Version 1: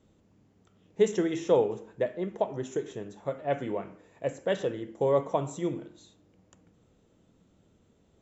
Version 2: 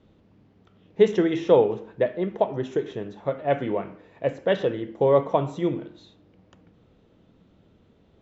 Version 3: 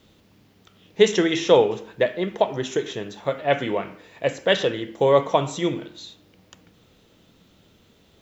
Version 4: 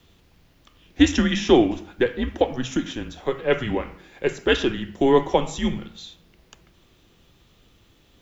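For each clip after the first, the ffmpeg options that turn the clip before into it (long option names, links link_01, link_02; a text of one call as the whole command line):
ffmpeg -i in.wav -af "lowpass=frequency=4600:width=0.5412,lowpass=frequency=4600:width=1.3066,volume=6dB" out.wav
ffmpeg -i in.wav -af "crystalizer=i=8.5:c=0" out.wav
ffmpeg -i in.wav -af "afreqshift=-130" out.wav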